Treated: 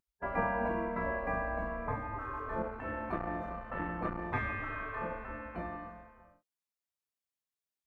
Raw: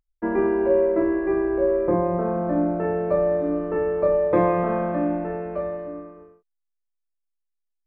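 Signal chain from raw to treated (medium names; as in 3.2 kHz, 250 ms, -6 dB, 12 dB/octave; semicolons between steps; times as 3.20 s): spectral gate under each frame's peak -15 dB weak; 2.62–4.34 s: transformer saturation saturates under 540 Hz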